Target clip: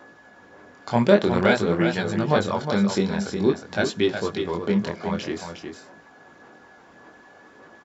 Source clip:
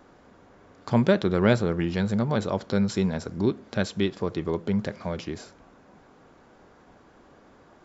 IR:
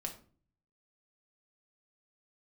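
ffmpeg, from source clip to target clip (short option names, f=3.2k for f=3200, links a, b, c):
-filter_complex "[0:a]highpass=f=360:p=1,aphaser=in_gain=1:out_gain=1:delay=1.4:decay=0.4:speed=1.7:type=sinusoidal,aeval=exprs='val(0)+0.00178*sin(2*PI*1700*n/s)':c=same,flanger=delay=17.5:depth=7.6:speed=0.51,asplit=2[a][b];[b]aecho=0:1:362:0.447[c];[a][c]amix=inputs=2:normalize=0,volume=7dB"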